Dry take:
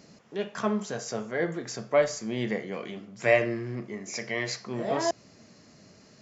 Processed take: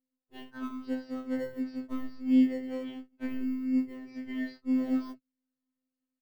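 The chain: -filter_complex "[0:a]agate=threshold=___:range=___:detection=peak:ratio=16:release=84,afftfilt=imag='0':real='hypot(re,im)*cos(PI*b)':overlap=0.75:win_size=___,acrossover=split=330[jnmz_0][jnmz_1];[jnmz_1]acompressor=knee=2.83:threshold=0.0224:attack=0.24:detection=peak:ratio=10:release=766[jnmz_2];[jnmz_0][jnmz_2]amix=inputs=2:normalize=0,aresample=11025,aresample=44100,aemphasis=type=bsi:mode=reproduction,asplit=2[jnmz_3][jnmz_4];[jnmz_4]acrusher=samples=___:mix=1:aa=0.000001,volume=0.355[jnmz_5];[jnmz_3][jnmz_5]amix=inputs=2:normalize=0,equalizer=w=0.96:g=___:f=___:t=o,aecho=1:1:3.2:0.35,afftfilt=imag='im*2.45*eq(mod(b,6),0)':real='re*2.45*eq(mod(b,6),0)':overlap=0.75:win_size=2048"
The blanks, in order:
0.00708, 0.0112, 2048, 18, 4, 330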